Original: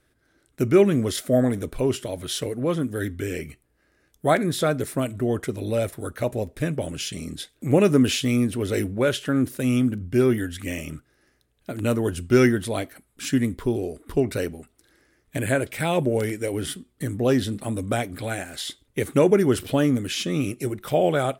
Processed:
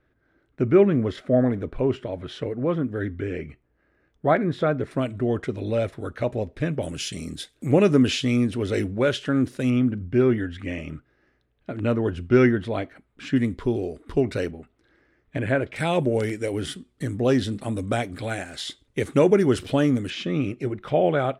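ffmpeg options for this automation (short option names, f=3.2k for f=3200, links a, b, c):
-af "asetnsamples=n=441:p=0,asendcmd='4.91 lowpass f 4000;6.83 lowpass f 9700;7.71 lowpass f 5800;9.7 lowpass f 2700;13.36 lowpass f 5300;14.51 lowpass f 2700;15.76 lowpass f 7100;20.1 lowpass f 2900',lowpass=2.1k"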